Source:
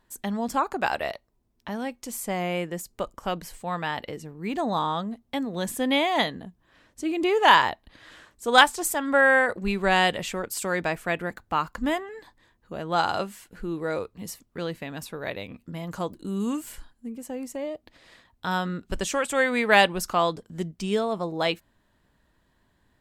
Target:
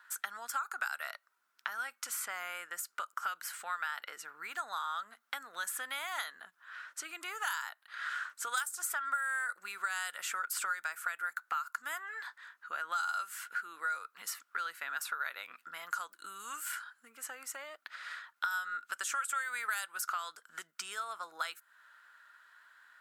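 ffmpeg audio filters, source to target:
-filter_complex "[0:a]atempo=1,acrossover=split=7000[a][b];[a]acompressor=threshold=-38dB:ratio=5[c];[c][b]amix=inputs=2:normalize=0,highpass=f=1.4k:t=q:w=9.8,acrossover=split=1900|4500[d][e][f];[d]acompressor=threshold=-39dB:ratio=4[g];[e]acompressor=threshold=-50dB:ratio=4[h];[f]acompressor=threshold=-41dB:ratio=4[i];[g][h][i]amix=inputs=3:normalize=0,volume=3.5dB"

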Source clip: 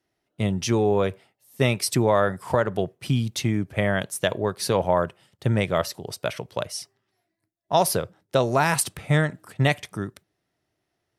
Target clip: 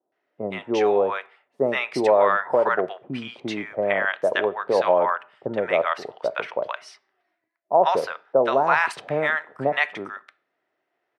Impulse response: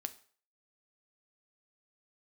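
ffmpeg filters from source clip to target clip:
-filter_complex "[0:a]highpass=530,lowpass=2.7k,acrossover=split=870[a][b];[b]adelay=120[c];[a][c]amix=inputs=2:normalize=0,asplit=2[d][e];[1:a]atrim=start_sample=2205,lowpass=2.6k[f];[e][f]afir=irnorm=-1:irlink=0,volume=0.5dB[g];[d][g]amix=inputs=2:normalize=0,volume=2.5dB"

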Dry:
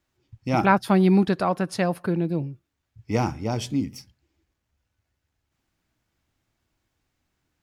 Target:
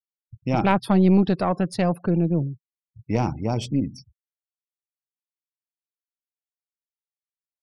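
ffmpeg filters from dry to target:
-filter_complex "[0:a]afftfilt=real='re*gte(hypot(re,im),0.01)':imag='im*gte(hypot(re,im),0.01)':win_size=1024:overlap=0.75,aeval=exprs='0.596*(cos(1*acos(clip(val(0)/0.596,-1,1)))-cos(1*PI/2))+0.266*(cos(2*acos(clip(val(0)/0.596,-1,1)))-cos(2*PI/2))+0.015*(cos(5*acos(clip(val(0)/0.596,-1,1)))-cos(5*PI/2))+0.0106*(cos(7*acos(clip(val(0)/0.596,-1,1)))-cos(7*PI/2))':c=same,equalizer=f=160:t=o:w=0.67:g=4,equalizer=f=1.6k:t=o:w=0.67:g=-6,equalizer=f=6.3k:t=o:w=0.67:g=-5,asplit=2[a][b];[b]alimiter=limit=-15dB:level=0:latency=1,volume=1.5dB[c];[a][c]amix=inputs=2:normalize=0,volume=-5.5dB"

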